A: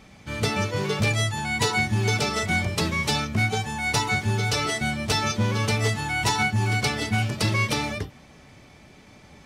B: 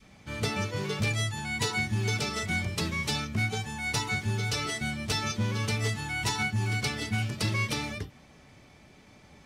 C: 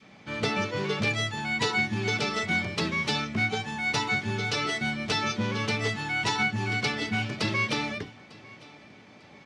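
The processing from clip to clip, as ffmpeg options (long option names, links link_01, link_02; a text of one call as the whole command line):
ffmpeg -i in.wav -af "adynamicequalizer=threshold=0.0112:dfrequency=710:dqfactor=0.9:tfrequency=710:tqfactor=0.9:attack=5:release=100:ratio=0.375:range=2.5:mode=cutabove:tftype=bell,volume=-5dB" out.wav
ffmpeg -i in.wav -af "highpass=170,lowpass=4500,aecho=1:1:899|1798:0.075|0.0247,volume=4.5dB" out.wav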